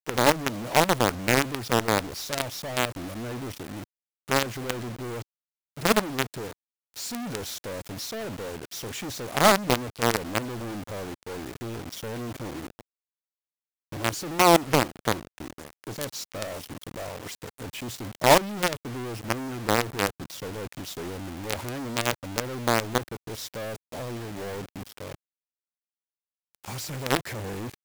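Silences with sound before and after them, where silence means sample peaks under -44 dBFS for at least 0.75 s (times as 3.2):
12.81–13.92
25.15–26.55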